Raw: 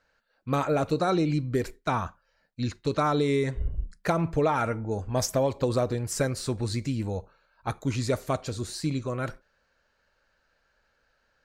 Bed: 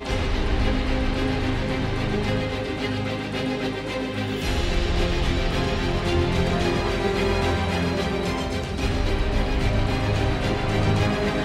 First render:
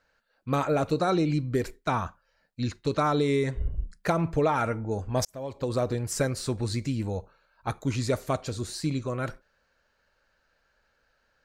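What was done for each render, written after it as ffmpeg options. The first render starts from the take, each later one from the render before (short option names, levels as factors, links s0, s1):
-filter_complex "[0:a]asplit=2[s0][s1];[s0]atrim=end=5.25,asetpts=PTS-STARTPTS,afade=t=out:st=5.246:d=0.004:c=hsin[s2];[s1]atrim=start=5.25,asetpts=PTS-STARTPTS,afade=t=in:d=0.64[s3];[s2][s3]concat=n=2:v=0:a=1"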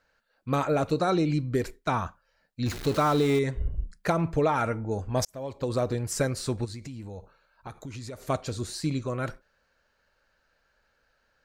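-filter_complex "[0:a]asettb=1/sr,asplit=3[s0][s1][s2];[s0]atrim=end=2.664[s3];[s1]atrim=start=2.66:end=3.39,asetpts=PTS-STARTPTS,afade=t=in:d=0.004:c=qsin,afade=t=out:st=0.726:d=0.004:c=qsin,aeval=exprs='val(0)+0.5*0.0251*sgn(val(0))':c=same[s4];[s2]atrim=start=3.386[s5];[s3][s4]acrossfade=d=0.004:c1=hsin:c2=qsin[s6];[s6][s5]acrossfade=d=0.004:c1=qsin:c2=hsin,asplit=3[s7][s8][s9];[s7]afade=t=out:st=6.64:d=0.02[s10];[s8]acompressor=threshold=0.0158:ratio=6:attack=3.2:release=140:knee=1:detection=peak,afade=t=in:st=6.64:d=0.02,afade=t=out:st=8.28:d=0.02[s11];[s9]afade=t=in:st=8.28:d=0.02[s12];[s10][s11][s12]amix=inputs=3:normalize=0"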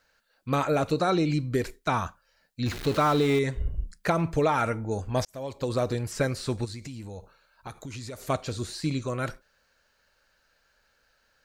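-filter_complex "[0:a]acrossover=split=3700[s0][s1];[s1]acompressor=threshold=0.00316:ratio=4:attack=1:release=60[s2];[s0][s2]amix=inputs=2:normalize=0,highshelf=f=2900:g=9"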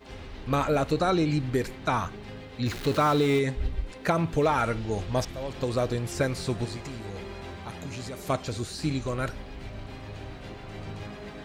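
-filter_complex "[1:a]volume=0.133[s0];[0:a][s0]amix=inputs=2:normalize=0"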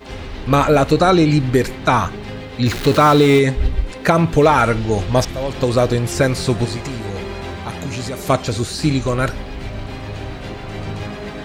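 -af "volume=3.76,alimiter=limit=0.794:level=0:latency=1"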